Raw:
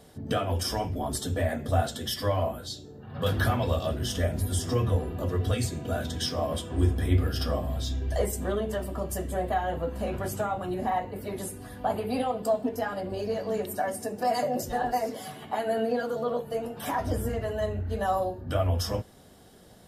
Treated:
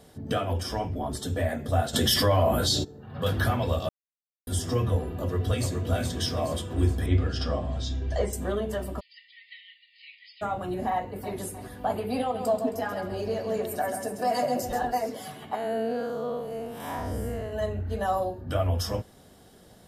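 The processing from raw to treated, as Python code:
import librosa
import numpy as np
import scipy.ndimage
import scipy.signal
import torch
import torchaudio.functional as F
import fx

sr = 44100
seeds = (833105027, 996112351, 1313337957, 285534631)

y = fx.high_shelf(x, sr, hz=5200.0, db=-9.0, at=(0.53, 1.23))
y = fx.env_flatten(y, sr, amount_pct=70, at=(1.93, 2.83), fade=0.02)
y = fx.echo_throw(y, sr, start_s=5.07, length_s=0.82, ms=420, feedback_pct=50, wet_db=-4.5)
y = fx.lowpass(y, sr, hz=7000.0, slope=24, at=(7.06, 8.33))
y = fx.brickwall_bandpass(y, sr, low_hz=1800.0, high_hz=5100.0, at=(8.99, 10.41), fade=0.02)
y = fx.echo_throw(y, sr, start_s=10.92, length_s=0.45, ms=310, feedback_pct=50, wet_db=-13.0)
y = fx.echo_feedback(y, sr, ms=134, feedback_pct=33, wet_db=-7.5, at=(12.34, 14.85), fade=0.02)
y = fx.spec_blur(y, sr, span_ms=163.0, at=(15.55, 17.53))
y = fx.edit(y, sr, fx.silence(start_s=3.89, length_s=0.58), tone=tone)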